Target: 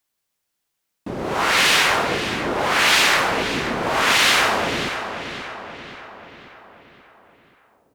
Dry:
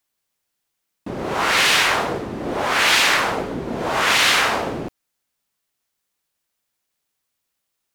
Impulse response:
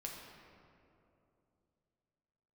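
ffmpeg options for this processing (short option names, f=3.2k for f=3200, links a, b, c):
-filter_complex "[0:a]asplit=2[a][b];[b]adelay=532,lowpass=f=4.4k:p=1,volume=-9dB,asplit=2[c][d];[d]adelay=532,lowpass=f=4.4k:p=1,volume=0.54,asplit=2[e][f];[f]adelay=532,lowpass=f=4.4k:p=1,volume=0.54,asplit=2[g][h];[h]adelay=532,lowpass=f=4.4k:p=1,volume=0.54,asplit=2[i][j];[j]adelay=532,lowpass=f=4.4k:p=1,volume=0.54,asplit=2[k][l];[l]adelay=532,lowpass=f=4.4k:p=1,volume=0.54[m];[a][c][e][g][i][k][m]amix=inputs=7:normalize=0"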